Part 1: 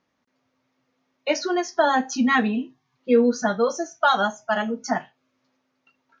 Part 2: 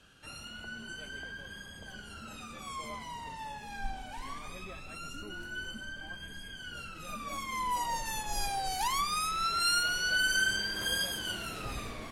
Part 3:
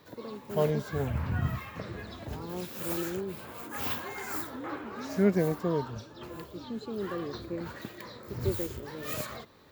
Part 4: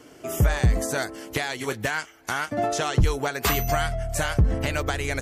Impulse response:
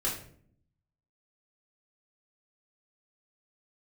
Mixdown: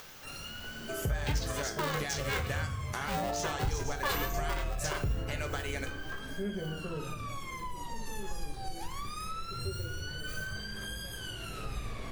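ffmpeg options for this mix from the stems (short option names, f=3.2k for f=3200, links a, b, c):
-filter_complex "[0:a]aemphasis=mode=production:type=riaa,acompressor=mode=upward:threshold=-21dB:ratio=2.5,aeval=exprs='val(0)*sgn(sin(2*PI*300*n/s))':c=same,volume=-10dB,asplit=2[a][b];[b]volume=-11.5dB[c];[1:a]acrossover=split=190[d][e];[e]acompressor=threshold=-42dB:ratio=5[f];[d][f]amix=inputs=2:normalize=0,volume=-1dB,asplit=2[g][h];[h]volume=-7dB[i];[2:a]equalizer=f=85:w=1.3:g=11.5,adelay=1200,volume=-14.5dB,asplit=2[j][k];[k]volume=-4.5dB[l];[3:a]adelay=650,volume=-7.5dB,asplit=2[m][n];[n]volume=-9.5dB[o];[4:a]atrim=start_sample=2205[p];[c][i][l][o]amix=inputs=4:normalize=0[q];[q][p]afir=irnorm=-1:irlink=0[r];[a][g][j][m][r]amix=inputs=5:normalize=0,acompressor=threshold=-35dB:ratio=2"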